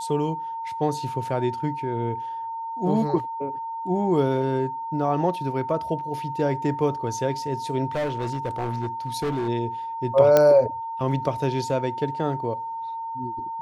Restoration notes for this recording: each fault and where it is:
tone 910 Hz -29 dBFS
7.95–9.49 clipped -22.5 dBFS
10.37 pop -5 dBFS

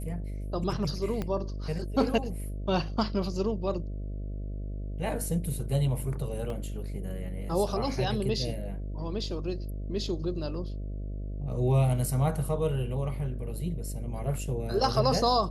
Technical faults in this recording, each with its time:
buzz 50 Hz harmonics 13 -35 dBFS
1.22 pop -19 dBFS
6.5 gap 2.1 ms

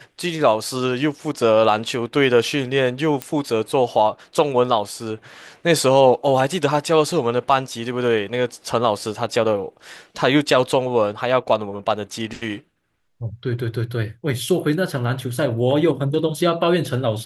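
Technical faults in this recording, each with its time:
3.22 pop -9 dBFS

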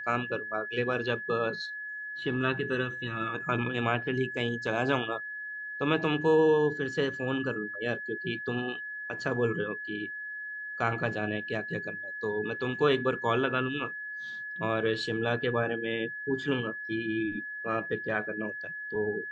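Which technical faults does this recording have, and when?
tone 1700 Hz -36 dBFS

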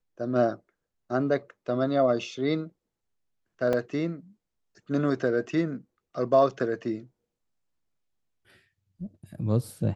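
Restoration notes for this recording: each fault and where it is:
3.73 gap 3 ms

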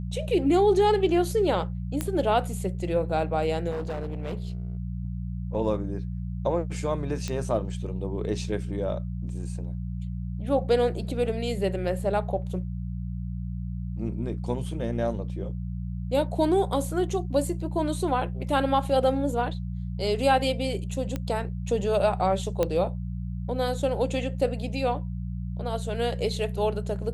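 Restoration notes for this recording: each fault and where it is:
hum 60 Hz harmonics 3 -32 dBFS
2.01 pop -14 dBFS
3.7–4.77 clipped -27.5 dBFS
7.28 pop -18 dBFS
21.16 pop -17 dBFS
22.63 pop -12 dBFS

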